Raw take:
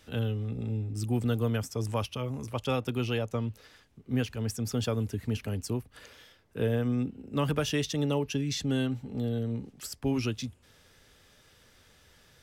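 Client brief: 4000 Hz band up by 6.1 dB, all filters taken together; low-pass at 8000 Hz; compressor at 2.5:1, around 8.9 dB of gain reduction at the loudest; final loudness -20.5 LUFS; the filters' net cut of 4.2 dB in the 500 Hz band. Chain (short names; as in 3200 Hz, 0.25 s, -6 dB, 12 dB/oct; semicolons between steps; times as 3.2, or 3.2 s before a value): LPF 8000 Hz; bell 500 Hz -5 dB; bell 4000 Hz +8.5 dB; compressor 2.5:1, threshold -39 dBFS; gain +19 dB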